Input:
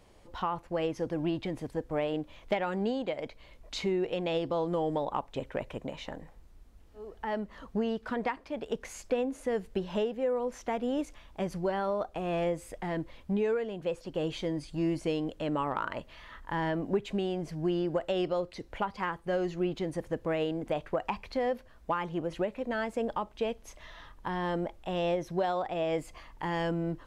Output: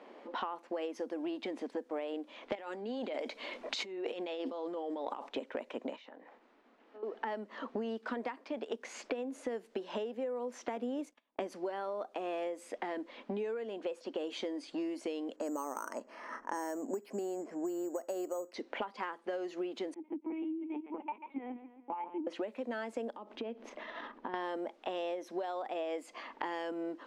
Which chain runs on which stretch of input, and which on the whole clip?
0:02.55–0:05.29: high-shelf EQ 5,400 Hz +8.5 dB + compressor whose output falls as the input rises −39 dBFS + phase shifter 1.8 Hz, delay 4.8 ms, feedback 22%
0:05.96–0:07.03: low-shelf EQ 500 Hz −8 dB + downward compressor 8 to 1, threshold −56 dBFS + linearly interpolated sample-rate reduction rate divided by 2×
0:10.76–0:11.53: notch filter 1,400 Hz, Q 29 + noise gate −47 dBFS, range −30 dB + low-shelf EQ 490 Hz +4.5 dB
0:15.36–0:18.54: low-pass filter 1,600 Hz + bad sample-rate conversion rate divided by 6×, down filtered, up hold
0:19.94–0:22.27: formant filter u + repeating echo 137 ms, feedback 53%, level −14.5 dB + linear-prediction vocoder at 8 kHz pitch kept
0:23.10–0:24.34: low-shelf EQ 410 Hz +10.5 dB + downward compressor 16 to 1, threshold −41 dBFS
whole clip: elliptic high-pass filter 230 Hz, stop band 40 dB; low-pass that shuts in the quiet parts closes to 2,300 Hz, open at −28.5 dBFS; downward compressor 8 to 1, threshold −45 dBFS; level +9.5 dB

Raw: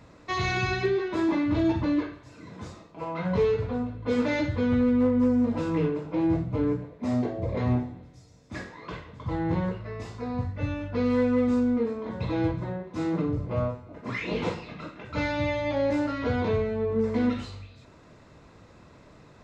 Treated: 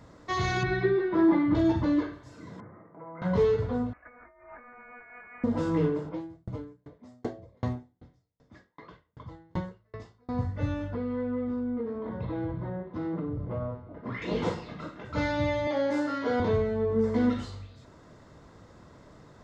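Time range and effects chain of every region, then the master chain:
0:00.63–0:01.55: Gaussian smoothing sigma 2.5 samples + comb filter 5.9 ms, depth 68%
0:02.60–0:03.22: Chebyshev band-pass filter 100–2,100 Hz, order 5 + downward compressor 2 to 1, threshold −48 dBFS
0:03.93–0:05.44: high-pass filter 1,500 Hz + compressor whose output falls as the input rises −49 dBFS + voice inversion scrambler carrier 2,700 Hz
0:06.09–0:10.29: low-pass that shuts in the quiet parts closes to 2,200 Hz, open at −22 dBFS + high-shelf EQ 4,300 Hz +10 dB + tremolo with a ramp in dB decaying 2.6 Hz, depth 40 dB
0:10.94–0:14.22: high-frequency loss of the air 300 metres + downward compressor 3 to 1, threshold −30 dBFS
0:15.67–0:16.40: high-pass filter 300 Hz + flutter between parallel walls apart 6.3 metres, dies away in 0.31 s
whole clip: parametric band 2,500 Hz −11.5 dB 0.27 octaves; notch filter 4,000 Hz, Q 19

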